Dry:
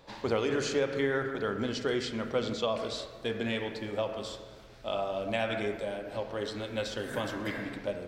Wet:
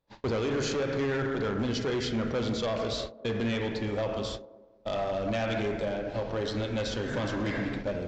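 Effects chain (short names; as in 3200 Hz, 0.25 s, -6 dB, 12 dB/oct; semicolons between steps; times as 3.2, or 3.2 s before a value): gate -41 dBFS, range -31 dB; low shelf 210 Hz +8.5 dB; in parallel at +3 dB: limiter -25.5 dBFS, peak gain reduction 10.5 dB; on the sum: hard clip -21.5 dBFS, distortion -13 dB; on a send: band-limited delay 0.195 s, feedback 38%, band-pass 430 Hz, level -14.5 dB; on the sum: downsampling 16000 Hz; gain -4 dB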